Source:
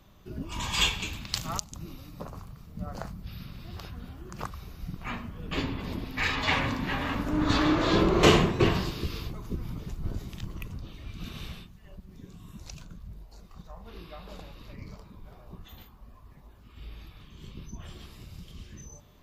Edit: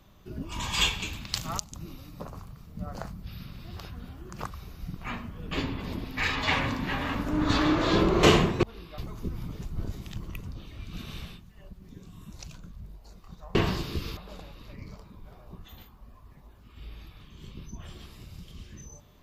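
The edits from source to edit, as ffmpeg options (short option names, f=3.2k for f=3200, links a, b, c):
-filter_complex "[0:a]asplit=5[a][b][c][d][e];[a]atrim=end=8.632[f];[b]atrim=start=13.818:end=14.172[g];[c]atrim=start=9.248:end=13.822[h];[d]atrim=start=8.628:end=9.252[i];[e]atrim=start=14.168[j];[f][g]acrossfade=d=0.004:c1=hsin:c2=hsin[k];[k][h]acrossfade=d=0.004:c1=hsin:c2=hsin[l];[l][i]acrossfade=d=0.004:c1=hsin:c2=hsin[m];[m][j]acrossfade=d=0.004:c1=hsin:c2=hsin"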